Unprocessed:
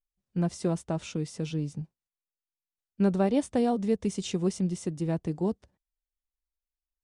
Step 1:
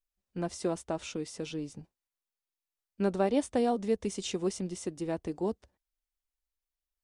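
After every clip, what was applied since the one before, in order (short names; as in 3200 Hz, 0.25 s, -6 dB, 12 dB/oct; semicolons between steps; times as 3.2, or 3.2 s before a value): bell 150 Hz -13 dB 0.89 oct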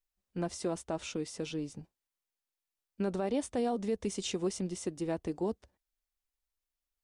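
limiter -23.5 dBFS, peak gain reduction 8 dB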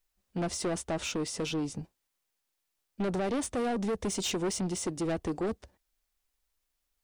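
soft clip -35.5 dBFS, distortion -8 dB; gain +8.5 dB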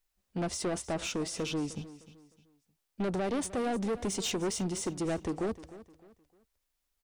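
feedback echo 0.306 s, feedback 34%, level -16.5 dB; gain -1 dB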